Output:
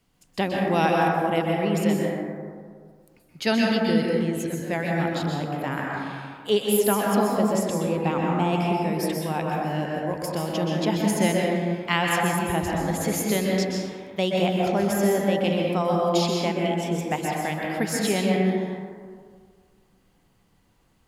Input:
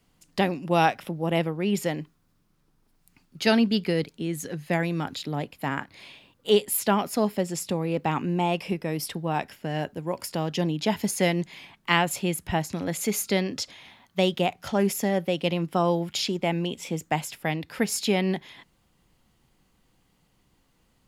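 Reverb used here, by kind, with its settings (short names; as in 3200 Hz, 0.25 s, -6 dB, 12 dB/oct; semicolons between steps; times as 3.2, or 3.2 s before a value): plate-style reverb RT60 1.9 s, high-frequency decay 0.3×, pre-delay 0.115 s, DRR -2.5 dB; gain -2 dB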